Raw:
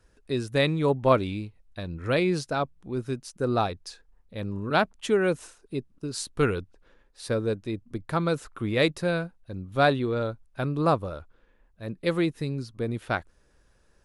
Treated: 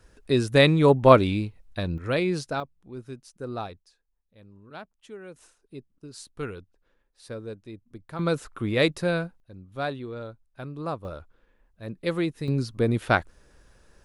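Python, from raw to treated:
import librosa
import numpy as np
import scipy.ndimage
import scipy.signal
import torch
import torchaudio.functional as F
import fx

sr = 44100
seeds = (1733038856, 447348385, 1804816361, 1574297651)

y = fx.gain(x, sr, db=fx.steps((0.0, 6.0), (1.98, -1.0), (2.6, -8.5), (3.8, -19.0), (5.36, -10.0), (8.19, 1.0), (9.4, -9.0), (11.05, -1.5), (12.48, 6.5)))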